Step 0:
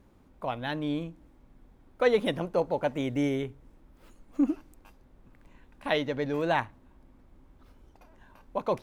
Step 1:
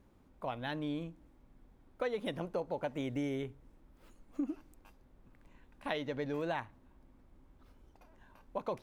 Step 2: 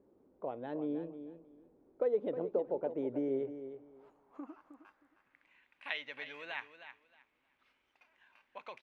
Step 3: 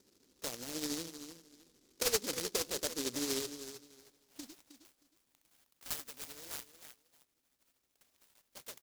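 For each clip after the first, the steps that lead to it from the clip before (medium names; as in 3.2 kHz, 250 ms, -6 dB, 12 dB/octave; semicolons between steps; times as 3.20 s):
compression 6:1, threshold -27 dBFS, peak gain reduction 9.5 dB; trim -5 dB
band-pass sweep 420 Hz -> 2.4 kHz, 3.26–5.57 s; feedback delay 313 ms, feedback 20%, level -11 dB; trim +6.5 dB
tremolo 13 Hz, depth 44%; delay time shaken by noise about 5.2 kHz, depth 0.35 ms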